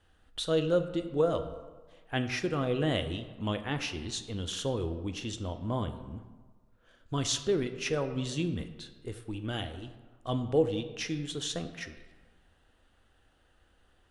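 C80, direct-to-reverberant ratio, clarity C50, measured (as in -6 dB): 12.0 dB, 8.0 dB, 11.0 dB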